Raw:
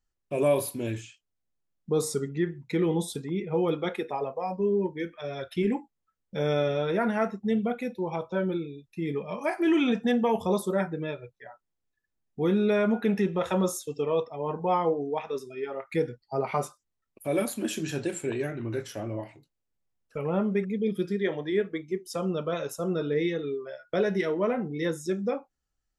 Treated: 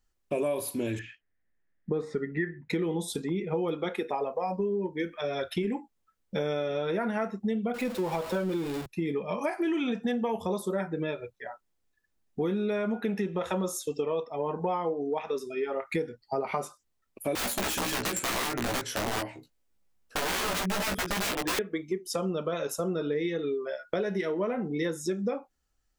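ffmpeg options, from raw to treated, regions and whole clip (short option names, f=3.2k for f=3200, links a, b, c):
-filter_complex "[0:a]asettb=1/sr,asplit=3[a][b][c];[a]atrim=end=0.994[d];[b]atrim=start=0.99:end=2.7,asetpts=PTS-STARTPTS,afade=t=in:d=0.004:c=qsin,afade=t=out:st=1.706:d=0.004:c=qsin,lowpass=f=1.8k:t=q:w=7.8,equalizer=f=1.2k:t=o:w=1.6:g=-8[e];[c]atrim=start=2.696[f];[d][e]acrossfade=d=0.004:c1=hsin:c2=qsin[g];[g][f]acrossfade=d=0.004:c1=qsin:c2=hsin,asettb=1/sr,asplit=3[h][i][j];[h]atrim=end=7.744[k];[i]atrim=start=7.74:end=8.86,asetpts=PTS-STARTPTS,afade=t=in:d=0.004:c=qsin,afade=t=out:st=1.116:d=0.004:c=qsin,aeval=exprs='val(0)+0.5*0.0168*sgn(val(0))':c=same,bandreject=f=6.1k:w=19[l];[j]atrim=start=8.856[m];[k][l]acrossfade=d=0.004:c1=hsin:c2=qsin[n];[n][m]acrossfade=d=0.004:c1=qsin:c2=hsin,asettb=1/sr,asplit=3[o][p][q];[o]atrim=end=17.354[r];[p]atrim=start=17.35:end=21.59,asetpts=PTS-STARTPTS,afade=t=in:d=0.004:c=qsin,afade=t=out:st=4.236:d=0.004:c=qsin,aeval=exprs='(mod(25.1*val(0)+1,2)-1)/25.1':c=same,asplit=2[s][t];[t]adelay=16,volume=-3.5dB[u];[s][u]amix=inputs=2:normalize=0,atrim=end_sample=186984[v];[q]atrim=start=21.586[w];[r][v]acrossfade=d=0.004:c1=hsin:c2=qsin[x];[x][w]acrossfade=d=0.004:c1=qsin:c2=hsin,equalizer=f=130:w=6:g=-14,acompressor=threshold=-33dB:ratio=6,volume=6dB"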